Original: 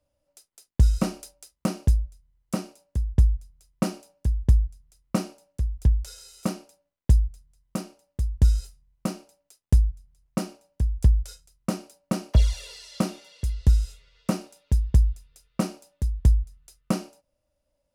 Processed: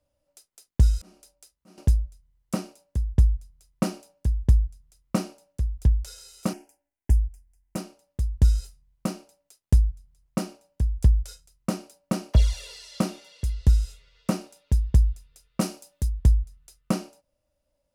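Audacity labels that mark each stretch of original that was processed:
0.890000	1.780000	auto swell 0.74 s
6.530000	7.760000	fixed phaser centre 790 Hz, stages 8
15.610000	16.090000	high shelf 3900 Hz +7.5 dB

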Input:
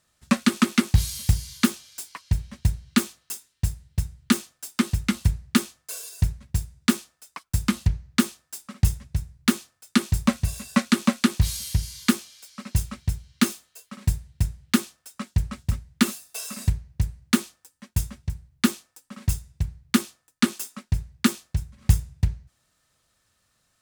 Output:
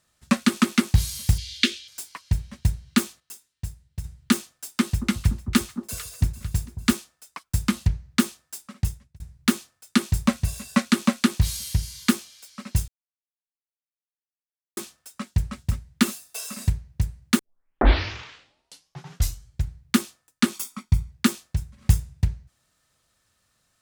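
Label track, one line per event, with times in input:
1.380000	1.880000	EQ curve 100 Hz 0 dB, 150 Hz -18 dB, 270 Hz -3 dB, 500 Hz -1 dB, 850 Hz -25 dB, 1700 Hz +1 dB, 2300 Hz +7 dB, 3500 Hz +11 dB, 15000 Hz -18 dB
3.200000	4.040000	gain -8 dB
4.790000	6.930000	echo with dull and thin repeats by turns 0.224 s, split 1000 Hz, feedback 65%, level -11 dB
8.560000	9.200000	fade out
12.880000	14.770000	mute
17.390000	17.390000	tape start 2.42 s
20.540000	21.110000	comb 0.9 ms

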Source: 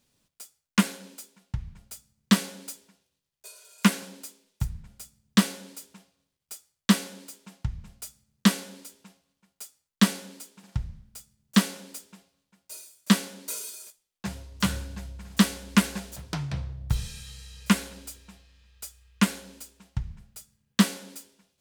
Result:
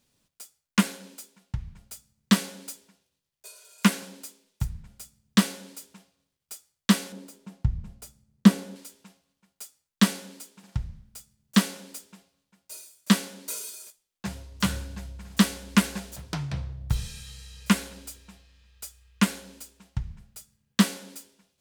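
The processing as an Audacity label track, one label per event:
7.120000	8.760000	tilt shelf lows +6 dB, about 870 Hz

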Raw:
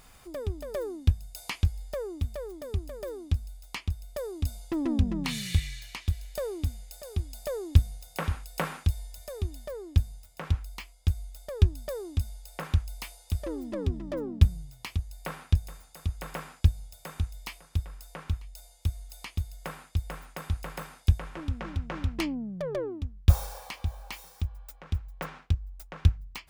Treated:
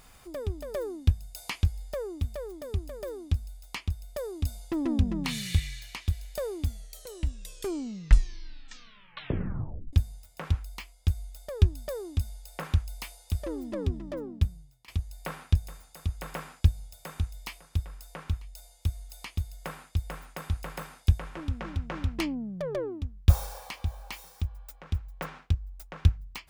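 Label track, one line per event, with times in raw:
6.560000	6.560000	tape stop 3.37 s
13.850000	14.880000	fade out, to -21 dB

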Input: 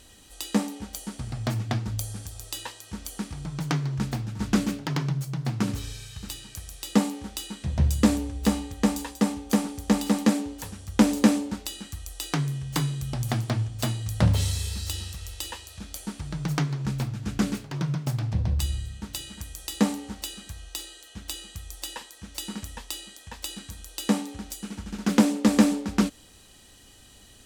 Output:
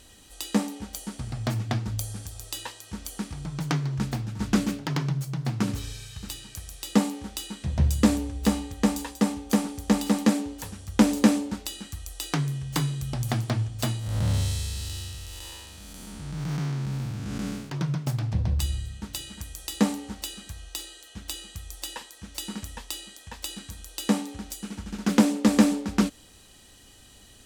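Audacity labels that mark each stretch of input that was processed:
13.990000	17.700000	time blur width 0.248 s

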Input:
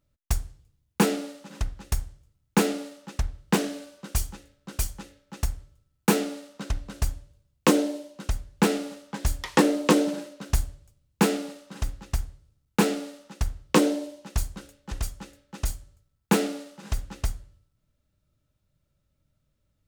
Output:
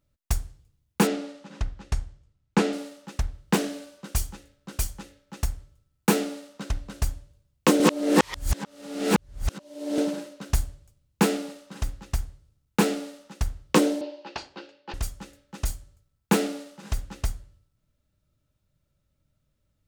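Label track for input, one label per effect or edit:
1.070000	2.730000	air absorption 75 m
7.800000	9.980000	reverse
14.010000	14.940000	speaker cabinet 330–4700 Hz, peaks and dips at 340 Hz +10 dB, 560 Hz +4 dB, 860 Hz +8 dB, 1600 Hz +3 dB, 2700 Hz +7 dB, 4600 Hz +7 dB

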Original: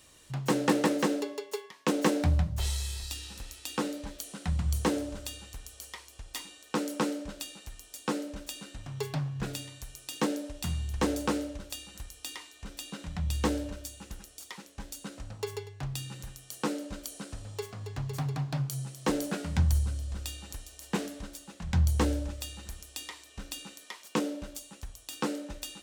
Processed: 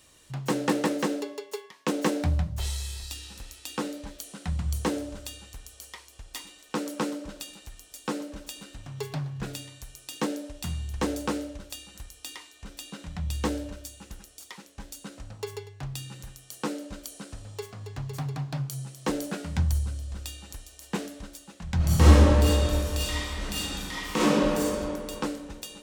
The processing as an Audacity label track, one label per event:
6.000000	9.380000	warbling echo 0.12 s, feedback 51%, depth 116 cents, level -20 dB
21.760000	24.640000	reverb throw, RT60 2.6 s, DRR -11.5 dB

